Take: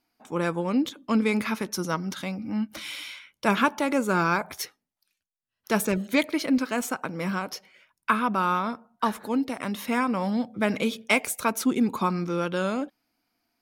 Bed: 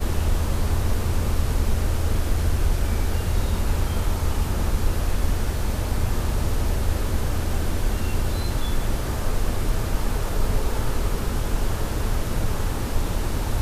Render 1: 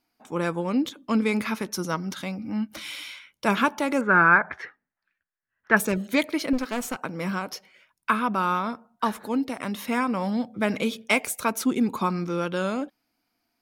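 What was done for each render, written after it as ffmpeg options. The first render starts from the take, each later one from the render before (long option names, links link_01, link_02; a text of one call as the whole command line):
ffmpeg -i in.wav -filter_complex "[0:a]asettb=1/sr,asplit=3[link_01][link_02][link_03];[link_01]atrim=end=4.014[link_04];[link_02]atrim=start=4.01:end=5.77,asetpts=PTS-STARTPTS,afade=type=in:duration=0.004:curve=qsin,afade=type=out:start_time=1.756:duration=0.004:curve=qsin,lowpass=frequency=1700:width_type=q:width=4.8[link_05];[link_03]atrim=start=5.766[link_06];[link_04][link_05]acrossfade=duration=0.004:curve1=hsin:curve2=qsin[link_07];[link_07][link_06]acrossfade=duration=0.004:curve1=qsin:curve2=hsin,asettb=1/sr,asplit=3[link_08][link_09][link_10];[link_08]atrim=end=6.534[link_11];[link_09]atrim=start=6.53:end=7.02,asetpts=PTS-STARTPTS,afade=type=in:duration=0.004:curve=qsin,afade=type=out:start_time=0.486:duration=0.004:curve=qsin,aeval=exprs='clip(val(0),-1,0.0224)':channel_layout=same[link_12];[link_10]atrim=start=7.016[link_13];[link_11][link_12]acrossfade=duration=0.004:curve1=hsin:curve2=qsin[link_14];[link_14][link_13]acrossfade=duration=0.004:curve1=qsin:curve2=hsin" out.wav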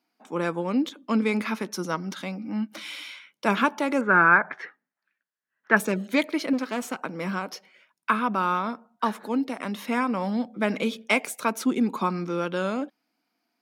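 ffmpeg -i in.wav -af "highpass=frequency=170:width=0.5412,highpass=frequency=170:width=1.3066,highshelf=frequency=7700:gain=-8" out.wav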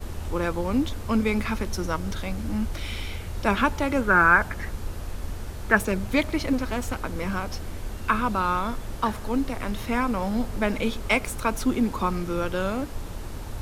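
ffmpeg -i in.wav -i bed.wav -filter_complex "[1:a]volume=-10.5dB[link_01];[0:a][link_01]amix=inputs=2:normalize=0" out.wav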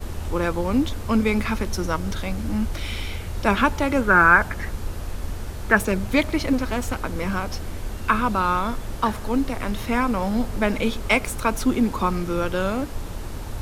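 ffmpeg -i in.wav -af "volume=3dB,alimiter=limit=-2dB:level=0:latency=1" out.wav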